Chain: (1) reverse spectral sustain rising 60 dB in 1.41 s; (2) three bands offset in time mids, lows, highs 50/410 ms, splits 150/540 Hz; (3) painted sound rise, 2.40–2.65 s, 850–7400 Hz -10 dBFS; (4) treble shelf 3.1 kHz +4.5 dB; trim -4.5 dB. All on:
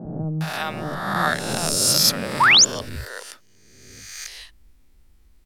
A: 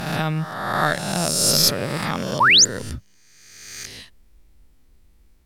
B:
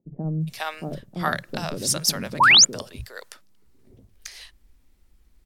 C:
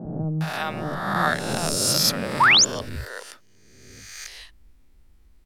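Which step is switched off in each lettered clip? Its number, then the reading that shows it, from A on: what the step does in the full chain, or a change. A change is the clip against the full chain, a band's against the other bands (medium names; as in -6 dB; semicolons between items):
2, crest factor change +2.0 dB; 1, 500 Hz band -2.5 dB; 4, 8 kHz band -3.5 dB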